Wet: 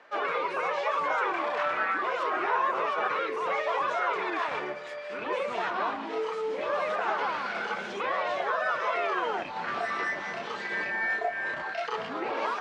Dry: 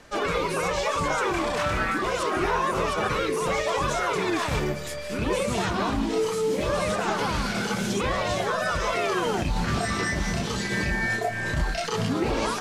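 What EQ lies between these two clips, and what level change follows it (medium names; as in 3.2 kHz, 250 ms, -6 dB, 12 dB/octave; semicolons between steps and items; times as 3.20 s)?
band-pass 600–2200 Hz; 0.0 dB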